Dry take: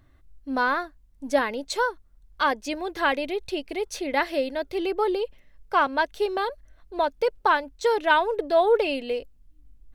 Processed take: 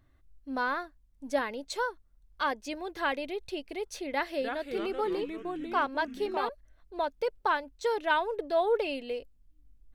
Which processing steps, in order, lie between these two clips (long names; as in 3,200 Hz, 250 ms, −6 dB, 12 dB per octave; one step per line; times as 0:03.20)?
0:04.11–0:06.49: delay with pitch and tempo change per echo 298 ms, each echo −3 semitones, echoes 3, each echo −6 dB
level −7 dB